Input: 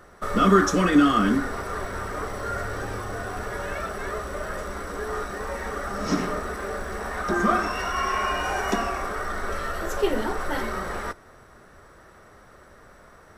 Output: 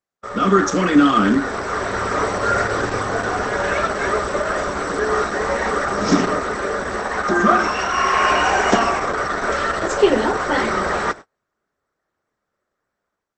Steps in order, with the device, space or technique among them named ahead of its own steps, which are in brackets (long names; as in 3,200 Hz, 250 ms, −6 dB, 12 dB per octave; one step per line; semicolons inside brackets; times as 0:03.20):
video call (high-pass filter 160 Hz 6 dB per octave; automatic gain control gain up to 12.5 dB; noise gate −30 dBFS, range −38 dB; Opus 12 kbit/s 48,000 Hz)